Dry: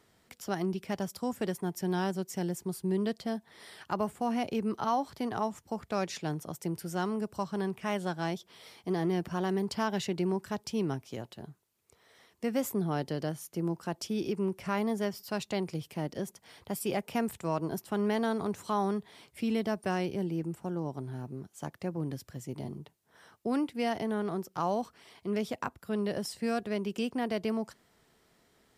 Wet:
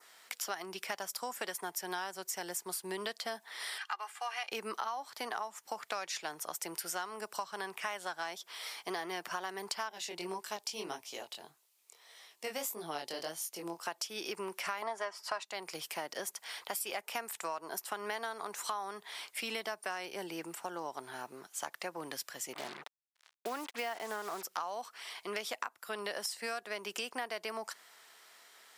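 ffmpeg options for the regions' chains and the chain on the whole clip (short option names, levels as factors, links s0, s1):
-filter_complex "[0:a]asettb=1/sr,asplit=3[s0][s1][s2];[s0]atrim=end=3.784[s3];[s1]atrim=start=3.78:end=4.52,asetpts=PTS-STARTPTS,afade=t=in:d=0.004:c=qsin,afade=t=out:st=0.736:d=0.004:c=qsin,highpass=1300,aemphasis=mode=reproduction:type=50kf,aecho=1:1:2.5:0.56,atrim=end_sample=32634[s4];[s2]atrim=start=4.516[s5];[s3][s4]acrossfade=d=0.004:c1=hsin:c2=qsin[s6];[s6][s5]acrossfade=d=0.004:c1=qsin:c2=hsin,asettb=1/sr,asplit=3[s7][s8][s9];[s7]atrim=end=9.894[s10];[s8]atrim=start=9.89:end=13.86,asetpts=PTS-STARTPTS,afade=t=in:d=0.004:c=qsin,afade=t=out:st=3.966:d=0.004:c=qsin,equalizer=f=1500:w=1.3:g=-7.5,flanger=delay=18:depth=5.7:speed=1.7[s11];[s9]atrim=start=13.856[s12];[s10][s11]acrossfade=d=0.004:c1=hsin:c2=qsin[s13];[s13][s12]acrossfade=d=0.004:c1=qsin:c2=hsin,asettb=1/sr,asplit=3[s14][s15][s16];[s14]atrim=end=14.824[s17];[s15]atrim=start=14.82:end=15.45,asetpts=PTS-STARTPTS,afade=t=in:d=0.004:c=qsin,afade=t=out:st=0.626:d=0.004:c=qsin,lowpass=f=9800:w=0.5412,lowpass=f=9800:w=1.3066,equalizer=f=990:t=o:w=2.2:g=13,aecho=1:1:3.1:0.4,atrim=end_sample=27783[s18];[s16]atrim=start=15.446[s19];[s17][s18]acrossfade=d=0.004:c1=hsin:c2=qsin[s20];[s20][s19]acrossfade=d=0.004:c1=qsin:c2=hsin,asettb=1/sr,asplit=3[s21][s22][s23];[s21]atrim=end=22.534[s24];[s22]atrim=start=22.53:end=24.43,asetpts=PTS-STARTPTS,afade=t=in:d=0.004:c=qsin,afade=t=out:st=1.896:d=0.004:c=qsin,aemphasis=mode=reproduction:type=75kf,acrusher=bits=7:mix=0:aa=0.5[s25];[s23]atrim=start=24.426[s26];[s24][s25]acrossfade=d=0.004:c1=hsin:c2=qsin[s27];[s27][s26]acrossfade=d=0.004:c1=qsin:c2=hsin,highpass=1000,adynamicequalizer=threshold=0.00141:dfrequency=3200:dqfactor=1.3:tfrequency=3200:tqfactor=1.3:attack=5:release=100:ratio=0.375:range=2:mode=cutabove:tftype=bell,acompressor=threshold=0.00501:ratio=10,volume=3.76"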